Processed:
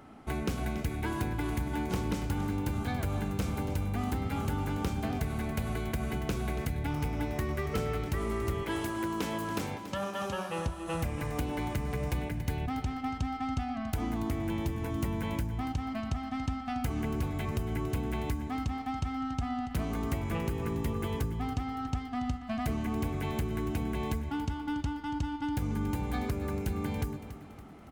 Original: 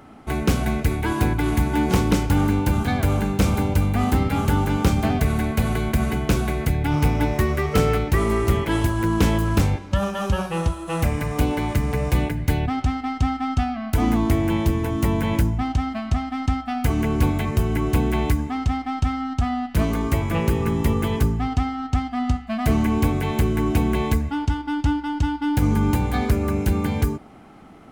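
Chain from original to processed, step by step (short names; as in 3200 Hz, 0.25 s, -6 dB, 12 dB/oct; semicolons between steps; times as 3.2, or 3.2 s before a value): 8.63–10.66 Bessel high-pass 260 Hz, order 2; compressor 4:1, threshold -23 dBFS, peak gain reduction 8.5 dB; feedback echo 0.282 s, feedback 50%, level -12.5 dB; gain -6.5 dB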